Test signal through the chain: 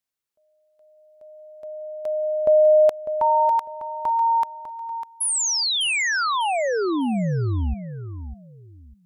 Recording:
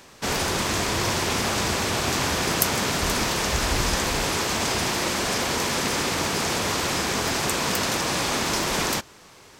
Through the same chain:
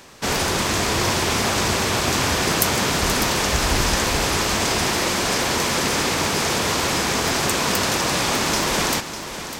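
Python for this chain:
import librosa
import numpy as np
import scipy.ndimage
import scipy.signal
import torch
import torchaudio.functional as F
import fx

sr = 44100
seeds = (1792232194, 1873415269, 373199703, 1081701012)

p1 = (np.mod(10.0 ** (8.0 / 20.0) * x + 1.0, 2.0) - 1.0) / 10.0 ** (8.0 / 20.0)
p2 = x + F.gain(torch.from_numpy(p1), -6.5).numpy()
y = fx.echo_feedback(p2, sr, ms=600, feedback_pct=24, wet_db=-10.5)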